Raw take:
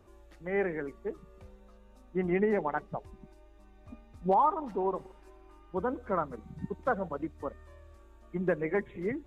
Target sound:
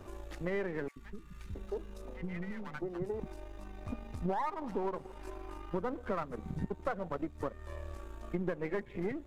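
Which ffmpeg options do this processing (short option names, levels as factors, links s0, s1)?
-filter_complex "[0:a]aeval=exprs='if(lt(val(0),0),0.447*val(0),val(0))':c=same,acompressor=threshold=0.00501:ratio=5,asettb=1/sr,asplit=3[s0][s1][s2];[s0]atrim=end=0.884[s3];[s1]atrim=start=0.88:end=3.2,asetpts=PTS-STARTPTS,afade=t=in:d=0.004:c=qsin,afade=t=out:st=2.316:d=0.004:c=qsin,acrossover=split=260|1200[s4][s5][s6];[s4]adelay=80[s7];[s5]adelay=670[s8];[s7][s8][s6]amix=inputs=3:normalize=0,atrim=end_sample=102312[s9];[s2]atrim=start=3.196[s10];[s3][s9]acrossfade=d=0.004:c1=hsin:c2=qsin[s11];[s11][s10]acrossfade=d=0.004:c1=qsin:c2=hsin,volume=4.22"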